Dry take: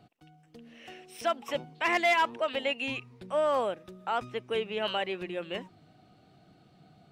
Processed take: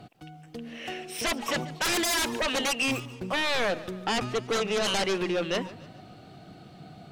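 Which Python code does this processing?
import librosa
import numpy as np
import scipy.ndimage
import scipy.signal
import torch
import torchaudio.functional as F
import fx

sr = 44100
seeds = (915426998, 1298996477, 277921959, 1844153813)

y = fx.median_filter(x, sr, points=15, at=(2.91, 3.33))
y = fx.fold_sine(y, sr, drive_db=13, ceiling_db=-17.5)
y = fx.echo_warbled(y, sr, ms=144, feedback_pct=46, rate_hz=2.8, cents=105, wet_db=-18)
y = F.gain(torch.from_numpy(y), -5.5).numpy()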